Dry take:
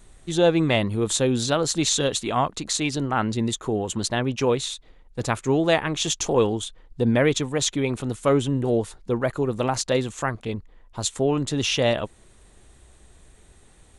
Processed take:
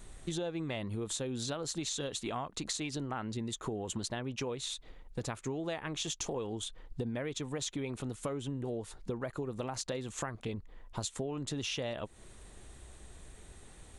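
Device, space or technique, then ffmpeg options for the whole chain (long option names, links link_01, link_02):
serial compression, leveller first: -af "acompressor=threshold=-25dB:ratio=2,acompressor=threshold=-35dB:ratio=5"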